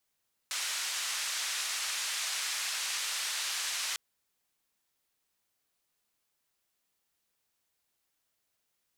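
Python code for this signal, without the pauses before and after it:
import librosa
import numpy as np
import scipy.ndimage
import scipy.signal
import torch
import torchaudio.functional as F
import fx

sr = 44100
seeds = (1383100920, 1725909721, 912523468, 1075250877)

y = fx.band_noise(sr, seeds[0], length_s=3.45, low_hz=1300.0, high_hz=7400.0, level_db=-34.5)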